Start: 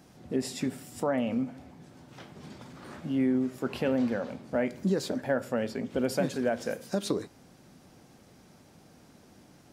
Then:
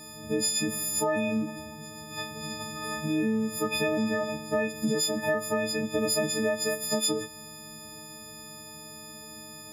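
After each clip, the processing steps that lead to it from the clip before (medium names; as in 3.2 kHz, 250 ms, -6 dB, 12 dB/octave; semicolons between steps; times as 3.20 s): partials quantised in pitch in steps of 6 st; compression 3:1, threshold -32 dBFS, peak gain reduction 9 dB; trim +6 dB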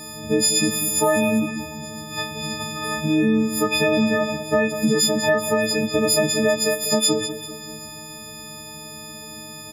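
feedback delay 194 ms, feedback 47%, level -9.5 dB; trim +8.5 dB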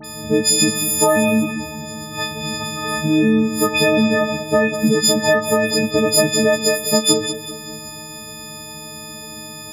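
phase dispersion highs, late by 45 ms, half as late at 2.2 kHz; trim +3.5 dB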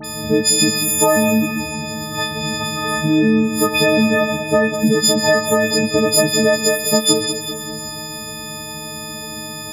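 in parallel at -0.5 dB: compression, threshold -26 dBFS, peak gain reduction 15.5 dB; on the sum: feedback echo behind a high-pass 141 ms, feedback 72%, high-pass 1.8 kHz, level -12 dB; trim -1 dB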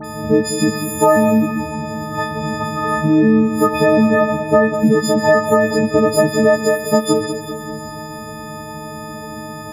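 resonant high shelf 2 kHz -11.5 dB, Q 1.5; trim +2 dB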